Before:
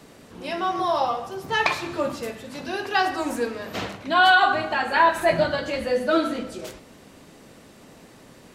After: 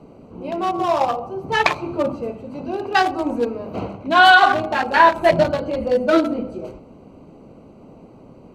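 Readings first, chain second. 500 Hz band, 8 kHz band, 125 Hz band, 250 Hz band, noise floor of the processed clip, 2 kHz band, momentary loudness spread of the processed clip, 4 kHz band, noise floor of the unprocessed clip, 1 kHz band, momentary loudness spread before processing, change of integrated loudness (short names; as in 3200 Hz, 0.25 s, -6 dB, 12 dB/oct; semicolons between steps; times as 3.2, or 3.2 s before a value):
+5.0 dB, n/a, +6.0 dB, +5.5 dB, -45 dBFS, +4.5 dB, 17 LU, +3.0 dB, -49 dBFS, +5.0 dB, 15 LU, +5.0 dB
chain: Wiener smoothing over 25 samples; gain +6 dB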